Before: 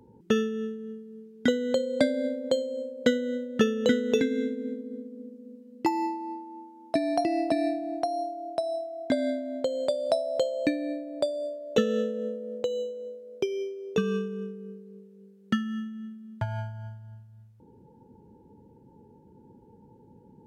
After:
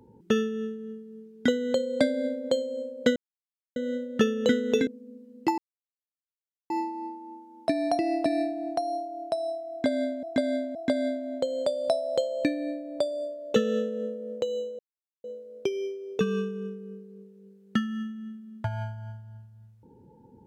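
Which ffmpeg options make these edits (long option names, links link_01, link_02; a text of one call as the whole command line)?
ffmpeg -i in.wav -filter_complex "[0:a]asplit=7[link_01][link_02][link_03][link_04][link_05][link_06][link_07];[link_01]atrim=end=3.16,asetpts=PTS-STARTPTS,afade=type=out:start_time=3.156:duration=0.004:curve=hsin,apad=pad_dur=0.6[link_08];[link_02]atrim=start=3.16:end=4.272,asetpts=PTS-STARTPTS,afade=type=in:duration=0.004:curve=hsin[link_09];[link_03]atrim=start=5.248:end=5.96,asetpts=PTS-STARTPTS,afade=type=out:start_time=0.708:duration=0.004:curve=hsin,apad=pad_dur=1.12[link_10];[link_04]atrim=start=5.96:end=9.492,asetpts=PTS-STARTPTS,afade=type=in:duration=0.004:curve=hsin[link_11];[link_05]atrim=start=8.968:end=9.492[link_12];[link_06]atrim=start=8.968:end=13.01,asetpts=PTS-STARTPTS,afade=type=out:start_time=4.038:duration=0.004:curve=hsin,apad=pad_dur=0.45[link_13];[link_07]atrim=start=13.01,asetpts=PTS-STARTPTS,afade=type=in:duration=0.004:curve=hsin[link_14];[link_08][link_09]concat=n=2:v=0:a=1[link_15];[link_10][link_11]concat=n=2:v=0:a=1[link_16];[link_15][link_16]acrossfade=duration=0.004:curve1=hsin:curve2=hsin[link_17];[link_17][link_12]acrossfade=duration=0.004:curve1=hsin:curve2=hsin[link_18];[link_13][link_14]concat=n=2:v=0:a=1[link_19];[link_18][link_19]acrossfade=duration=0.004:curve1=hsin:curve2=hsin" out.wav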